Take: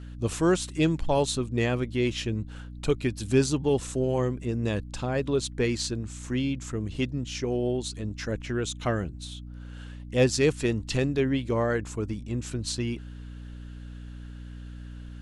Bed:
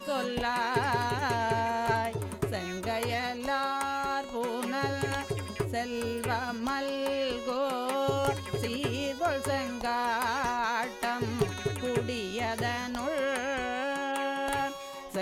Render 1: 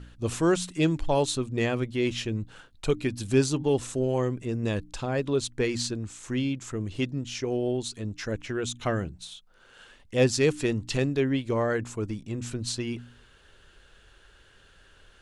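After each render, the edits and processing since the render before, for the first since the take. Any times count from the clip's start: de-hum 60 Hz, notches 5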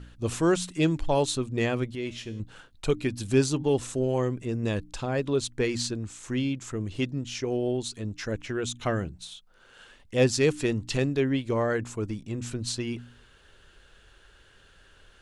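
1.95–2.40 s: feedback comb 77 Hz, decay 0.75 s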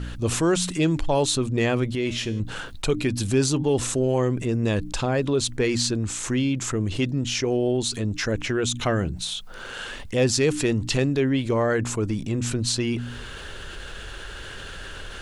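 level flattener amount 50%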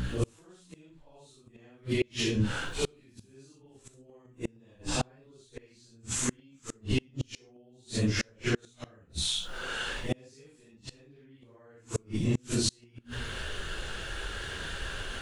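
phase randomisation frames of 200 ms; inverted gate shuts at -16 dBFS, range -34 dB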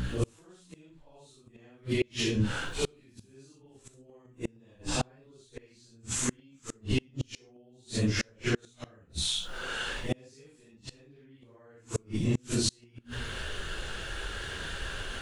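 no audible change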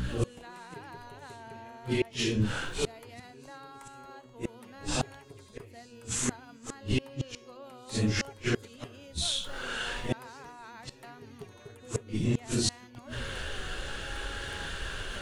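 add bed -18 dB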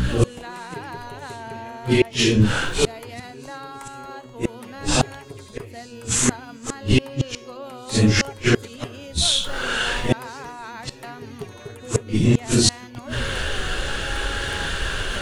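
trim +11.5 dB

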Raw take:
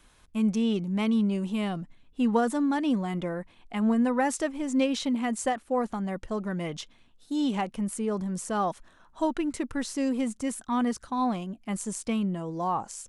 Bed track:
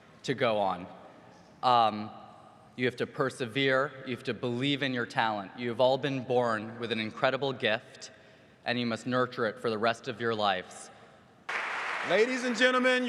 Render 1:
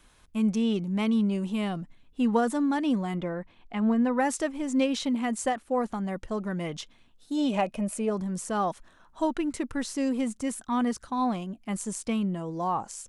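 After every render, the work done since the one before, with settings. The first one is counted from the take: 3.15–4.18 s: distance through air 99 m; 7.37–8.09 s: small resonant body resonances 620/2500 Hz, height 13 dB -> 16 dB, ringing for 40 ms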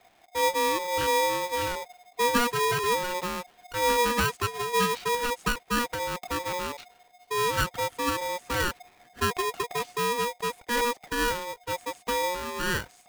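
Savitzky-Golay filter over 25 samples; polarity switched at an audio rate 720 Hz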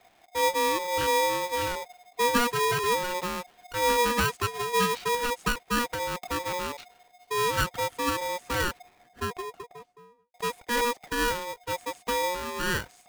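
8.48–10.34 s: studio fade out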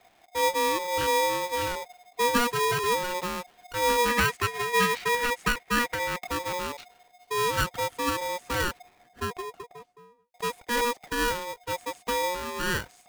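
4.08–6.27 s: peaking EQ 2 kHz +8 dB 0.57 oct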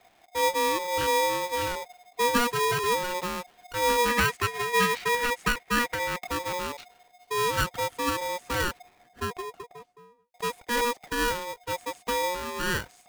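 no audible change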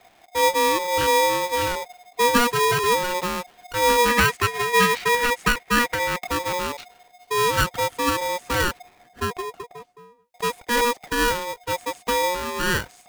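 trim +5.5 dB

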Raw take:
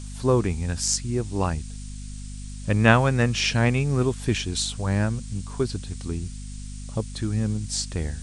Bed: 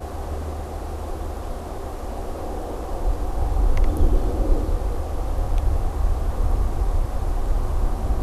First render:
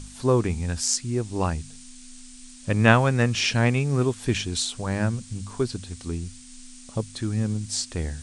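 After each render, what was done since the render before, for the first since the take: de-hum 50 Hz, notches 4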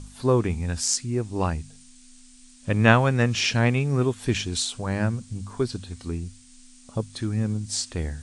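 noise print and reduce 6 dB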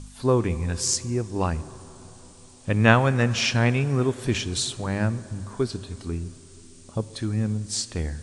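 plate-style reverb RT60 4.2 s, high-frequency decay 0.4×, DRR 15.5 dB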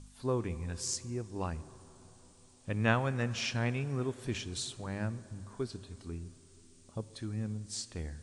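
trim -11.5 dB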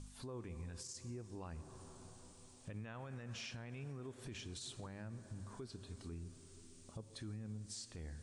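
compression 2:1, threshold -47 dBFS, peak gain reduction 13.5 dB; peak limiter -38.5 dBFS, peak gain reduction 11.5 dB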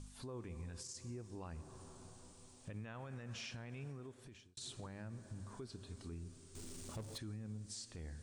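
3.85–4.57 s: fade out; 6.55–7.18 s: power-law waveshaper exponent 0.5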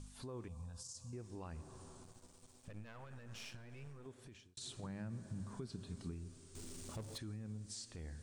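0.48–1.13 s: static phaser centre 860 Hz, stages 4; 2.03–4.06 s: partial rectifier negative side -12 dB; 4.83–6.11 s: peaking EQ 170 Hz +10.5 dB 0.7 oct

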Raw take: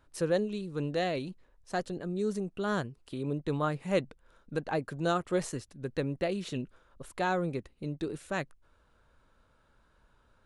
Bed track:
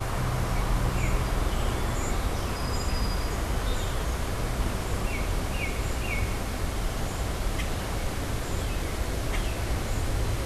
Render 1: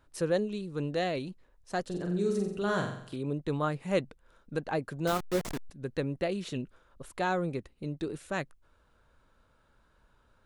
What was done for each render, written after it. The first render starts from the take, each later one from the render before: 1.83–3.16 s: flutter echo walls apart 7.7 m, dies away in 0.65 s; 5.07–5.70 s: send-on-delta sampling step -30 dBFS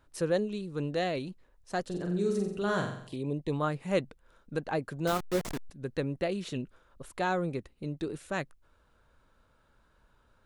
3.07–3.52 s: Butterworth band-stop 1.4 kHz, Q 1.9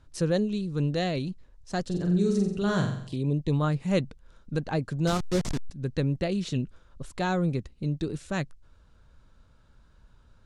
low-pass 5.5 kHz 12 dB/octave; tone controls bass +11 dB, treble +12 dB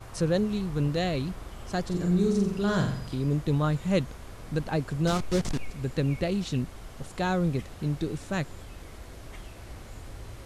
add bed track -14.5 dB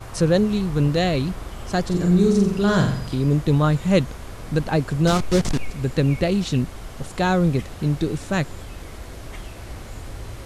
trim +7.5 dB

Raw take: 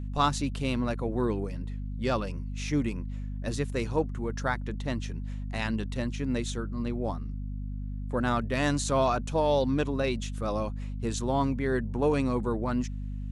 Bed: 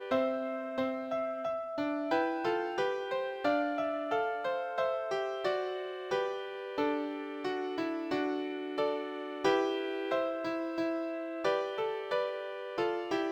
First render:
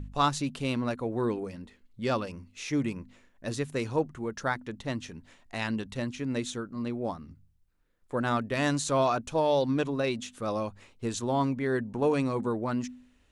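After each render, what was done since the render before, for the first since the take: de-hum 50 Hz, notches 5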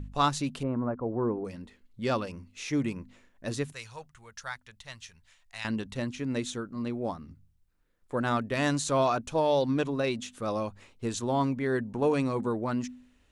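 0.63–1.45 s: low-pass 1.3 kHz 24 dB/octave; 3.72–5.65 s: amplifier tone stack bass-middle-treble 10-0-10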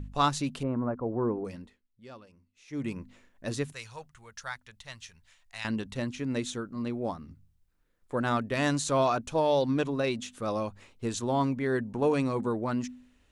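1.55–2.94 s: dip -19 dB, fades 0.27 s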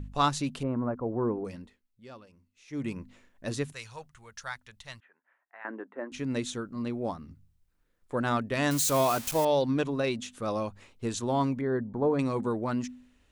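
5.00–6.12 s: elliptic band-pass 300–1700 Hz, stop band 50 dB; 8.71–9.45 s: zero-crossing glitches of -23.5 dBFS; 11.61–12.19 s: boxcar filter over 16 samples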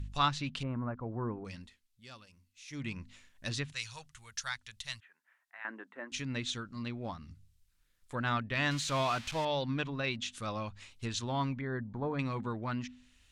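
low-pass that closes with the level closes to 2.6 kHz, closed at -27 dBFS; FFT filter 100 Hz 0 dB, 430 Hz -12 dB, 3.5 kHz +7 dB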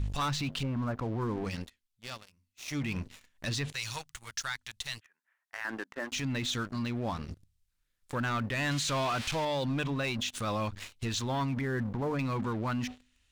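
waveshaping leveller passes 3; peak limiter -25.5 dBFS, peak gain reduction 10.5 dB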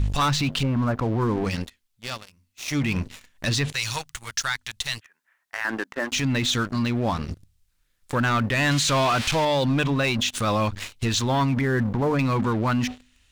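trim +9.5 dB

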